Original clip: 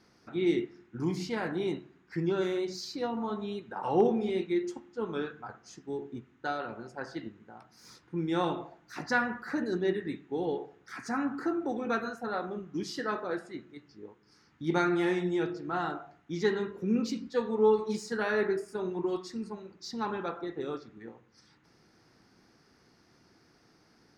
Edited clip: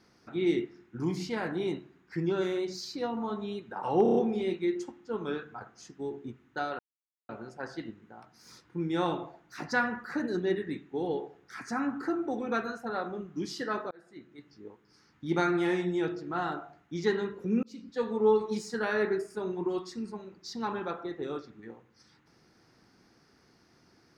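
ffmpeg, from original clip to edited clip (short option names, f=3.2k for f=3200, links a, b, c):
-filter_complex "[0:a]asplit=8[a][b][c][d][e][f][g][h];[a]atrim=end=4.062[i];[b]atrim=start=4.028:end=4.062[j];[c]atrim=start=4.028:end=4.062[k];[d]atrim=start=4.028:end=4.062[l];[e]atrim=start=4.028:end=6.67,asetpts=PTS-STARTPTS,afade=t=out:st=2.638:d=0.004:c=hsin,apad=pad_dur=0.5[m];[f]atrim=start=6.67:end=13.29,asetpts=PTS-STARTPTS,afade=t=in:d=0.004:c=hsin,afade=t=out:st=6.616:d=0.004:c=hsin[n];[g]atrim=start=13.29:end=17.01,asetpts=PTS-STARTPTS,afade=t=in:d=0.59,afade=t=out:st=3.716:d=0.004:c=hsin[o];[h]atrim=start=17.01,asetpts=PTS-STARTPTS,afade=t=in:d=0.44[p];[i][j]acrossfade=d=0.004:c1=hsin:c2=hsin[q];[q][k]acrossfade=d=0.004:c1=hsin:c2=hsin[r];[r][l]acrossfade=d=0.004:c1=hsin:c2=hsin[s];[m][n][o][p]concat=n=4:v=0:a=1[t];[s][t]acrossfade=d=0.004:c1=hsin:c2=hsin"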